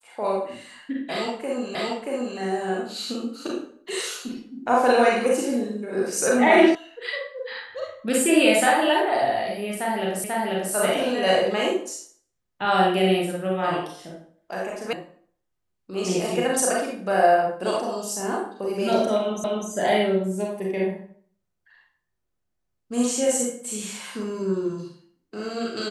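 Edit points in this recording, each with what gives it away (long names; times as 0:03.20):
0:01.75: the same again, the last 0.63 s
0:06.75: cut off before it has died away
0:10.24: the same again, the last 0.49 s
0:14.93: cut off before it has died away
0:19.44: the same again, the last 0.25 s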